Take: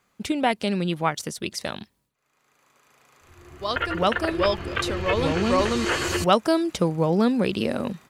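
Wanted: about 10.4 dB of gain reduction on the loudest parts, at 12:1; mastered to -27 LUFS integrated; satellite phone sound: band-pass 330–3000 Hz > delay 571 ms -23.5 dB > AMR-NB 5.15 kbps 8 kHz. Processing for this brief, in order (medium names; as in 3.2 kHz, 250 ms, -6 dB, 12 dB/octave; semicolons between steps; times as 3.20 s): compression 12:1, threshold -23 dBFS; band-pass 330–3000 Hz; delay 571 ms -23.5 dB; trim +6 dB; AMR-NB 5.15 kbps 8 kHz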